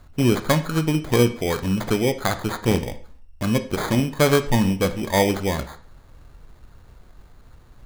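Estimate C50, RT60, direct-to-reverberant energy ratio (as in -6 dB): 14.0 dB, 0.45 s, 9.0 dB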